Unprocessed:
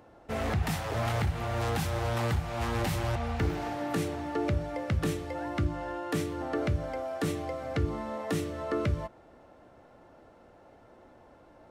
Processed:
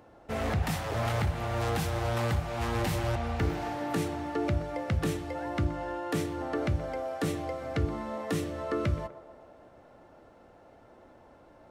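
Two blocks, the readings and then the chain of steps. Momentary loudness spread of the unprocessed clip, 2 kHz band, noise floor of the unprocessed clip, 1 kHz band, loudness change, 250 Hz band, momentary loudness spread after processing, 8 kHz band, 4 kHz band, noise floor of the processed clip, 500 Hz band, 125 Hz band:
4 LU, 0.0 dB, -57 dBFS, +0.5 dB, 0.0 dB, 0.0 dB, 5 LU, 0.0 dB, 0.0 dB, -56 dBFS, +0.5 dB, 0.0 dB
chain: band-passed feedback delay 124 ms, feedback 69%, band-pass 650 Hz, level -11.5 dB

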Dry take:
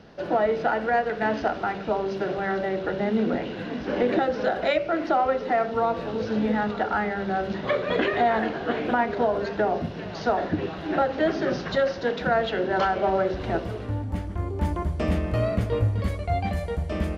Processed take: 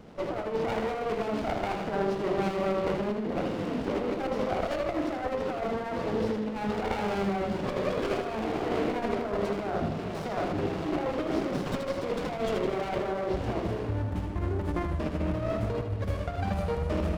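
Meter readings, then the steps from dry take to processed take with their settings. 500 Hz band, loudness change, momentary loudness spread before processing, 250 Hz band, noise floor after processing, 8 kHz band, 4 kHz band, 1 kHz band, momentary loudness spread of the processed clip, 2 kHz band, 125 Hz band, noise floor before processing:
-5.0 dB, -5.0 dB, 6 LU, -3.0 dB, -35 dBFS, no reading, -4.5 dB, -7.5 dB, 3 LU, -9.0 dB, -3.5 dB, -35 dBFS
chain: peak limiter -16.5 dBFS, peak gain reduction 5 dB; compressor with a negative ratio -27 dBFS, ratio -0.5; on a send: tape echo 78 ms, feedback 60%, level -5 dB, low-pass 5.7 kHz; on the sum: sliding maximum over 17 samples; trim -2 dB

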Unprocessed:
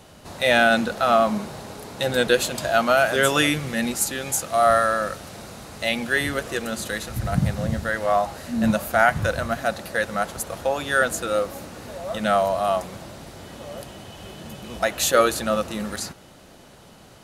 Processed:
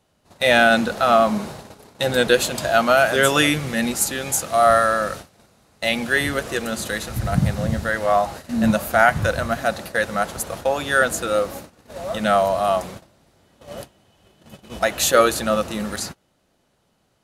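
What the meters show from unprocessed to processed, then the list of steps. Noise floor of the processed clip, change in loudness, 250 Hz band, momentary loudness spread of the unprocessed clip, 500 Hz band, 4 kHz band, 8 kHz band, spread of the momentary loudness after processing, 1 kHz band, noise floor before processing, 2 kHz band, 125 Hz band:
-66 dBFS, +2.5 dB, +2.5 dB, 19 LU, +2.5 dB, +2.5 dB, +2.5 dB, 13 LU, +2.5 dB, -48 dBFS, +2.5 dB, +2.5 dB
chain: gate -35 dBFS, range -20 dB; trim +2.5 dB

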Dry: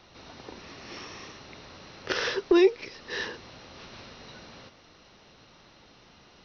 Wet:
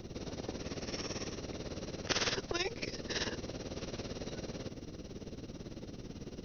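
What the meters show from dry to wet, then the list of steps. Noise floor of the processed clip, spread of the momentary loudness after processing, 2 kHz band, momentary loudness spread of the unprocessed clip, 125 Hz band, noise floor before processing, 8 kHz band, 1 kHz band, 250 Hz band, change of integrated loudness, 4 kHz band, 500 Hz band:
-51 dBFS, 13 LU, -6.5 dB, 25 LU, +8.5 dB, -57 dBFS, no reading, -5.5 dB, -10.5 dB, -12.5 dB, -1.5 dB, -12.0 dB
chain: FFT filter 250 Hz 0 dB, 470 Hz -5 dB, 910 Hz -21 dB, 4.1 kHz -18 dB, 7.2 kHz -6 dB; tremolo 18 Hz, depth 75%; spectrum-flattening compressor 4:1; trim +2.5 dB

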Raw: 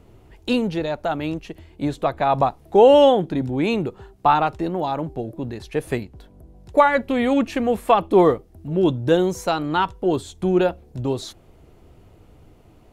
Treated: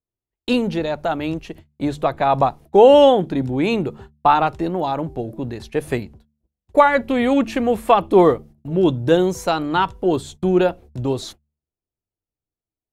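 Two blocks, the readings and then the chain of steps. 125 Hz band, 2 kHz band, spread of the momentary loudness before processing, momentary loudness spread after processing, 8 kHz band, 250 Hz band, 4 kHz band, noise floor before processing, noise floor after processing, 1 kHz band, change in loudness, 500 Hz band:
+1.5 dB, +2.0 dB, 14 LU, 14 LU, no reading, +2.0 dB, +2.0 dB, -51 dBFS, under -85 dBFS, +2.0 dB, +2.0 dB, +2.0 dB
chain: gate -39 dBFS, range -45 dB; de-hum 73.83 Hz, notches 3; trim +2 dB

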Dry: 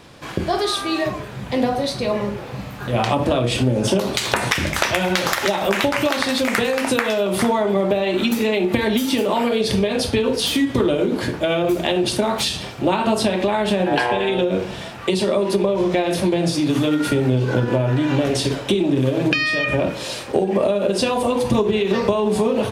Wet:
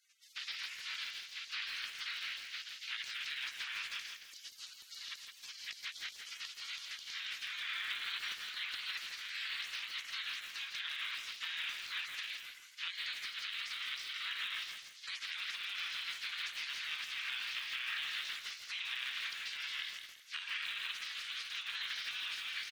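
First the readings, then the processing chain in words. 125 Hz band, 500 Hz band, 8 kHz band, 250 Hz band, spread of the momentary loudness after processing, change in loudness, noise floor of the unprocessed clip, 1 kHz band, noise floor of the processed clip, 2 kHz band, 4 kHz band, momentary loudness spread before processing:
under -40 dB, under -40 dB, -20.0 dB, under -40 dB, 7 LU, -20.0 dB, -32 dBFS, -29.0 dB, -56 dBFS, -14.5 dB, -12.0 dB, 4 LU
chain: spectral gate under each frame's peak -30 dB weak; Bessel high-pass 2.4 kHz, order 6; compression 10:1, threshold -45 dBFS, peak gain reduction 16 dB; saturation -34 dBFS, distortion -27 dB; distance through air 240 m; feedback delay 166 ms, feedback 30%, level -7 dB; bit-crushed delay 149 ms, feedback 80%, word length 9-bit, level -12.5 dB; trim +13.5 dB

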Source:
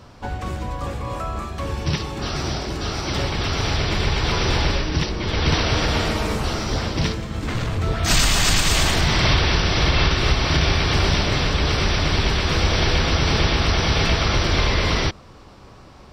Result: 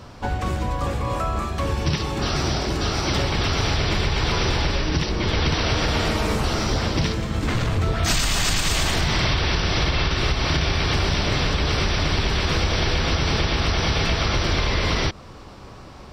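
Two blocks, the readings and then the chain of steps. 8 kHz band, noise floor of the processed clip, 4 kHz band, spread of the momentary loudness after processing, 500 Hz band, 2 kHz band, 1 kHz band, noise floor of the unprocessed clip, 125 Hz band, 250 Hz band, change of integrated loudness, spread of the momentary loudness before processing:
-2.5 dB, -41 dBFS, -2.0 dB, 4 LU, -1.0 dB, -2.0 dB, -1.0 dB, -44 dBFS, -1.5 dB, -1.0 dB, -1.5 dB, 10 LU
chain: compression, threshold -21 dBFS, peak gain reduction 8.5 dB; trim +3.5 dB

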